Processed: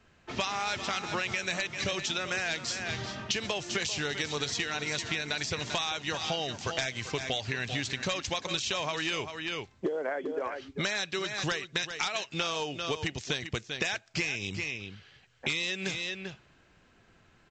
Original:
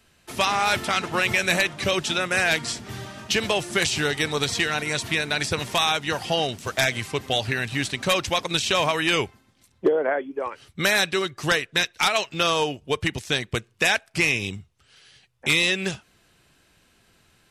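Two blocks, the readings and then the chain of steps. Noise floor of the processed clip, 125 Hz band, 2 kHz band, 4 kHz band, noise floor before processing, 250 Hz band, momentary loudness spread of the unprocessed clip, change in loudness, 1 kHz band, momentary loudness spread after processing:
-63 dBFS, -7.5 dB, -9.0 dB, -7.5 dB, -62 dBFS, -8.0 dB, 8 LU, -9.0 dB, -10.0 dB, 4 LU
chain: treble shelf 4.1 kHz +7 dB; on a send: delay 392 ms -12 dB; on the sum: level-controlled noise filter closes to 1.9 kHz, open at -20.5 dBFS; compression 6:1, threshold -28 dBFS, peak gain reduction 13 dB; trim -1 dB; A-law 128 kbps 16 kHz

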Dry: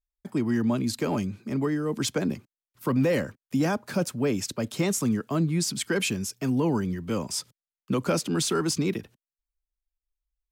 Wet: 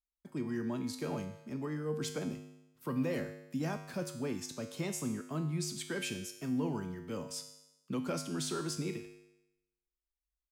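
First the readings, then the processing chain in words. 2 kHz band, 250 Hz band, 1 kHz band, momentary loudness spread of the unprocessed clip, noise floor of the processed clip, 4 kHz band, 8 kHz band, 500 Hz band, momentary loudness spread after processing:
-10.5 dB, -10.5 dB, -10.5 dB, 6 LU, under -85 dBFS, -10.5 dB, -10.5 dB, -10.5 dB, 7 LU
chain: feedback comb 51 Hz, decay 0.9 s, harmonics odd, mix 80%

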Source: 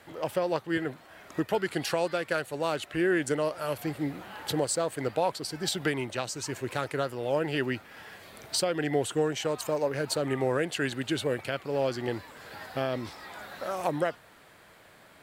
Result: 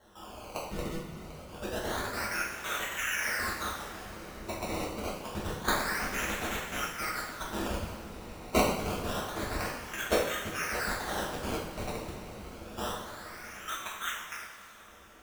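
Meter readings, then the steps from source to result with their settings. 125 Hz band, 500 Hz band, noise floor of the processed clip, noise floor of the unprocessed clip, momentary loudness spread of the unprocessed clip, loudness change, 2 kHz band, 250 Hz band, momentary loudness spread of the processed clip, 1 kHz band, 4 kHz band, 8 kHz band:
-5.0 dB, -8.0 dB, -50 dBFS, -55 dBFS, 10 LU, -3.5 dB, +1.0 dB, -6.5 dB, 14 LU, -0.5 dB, -2.0 dB, -1.5 dB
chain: backward echo that repeats 169 ms, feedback 44%, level -4 dB; elliptic high-pass 1.2 kHz, stop band 80 dB; dynamic bell 4.3 kHz, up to +6 dB, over -53 dBFS, Q 4.6; level held to a coarse grid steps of 13 dB; decimation with a swept rate 18×, swing 100% 0.27 Hz; two-slope reverb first 0.59 s, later 4.4 s, from -17 dB, DRR -6 dB

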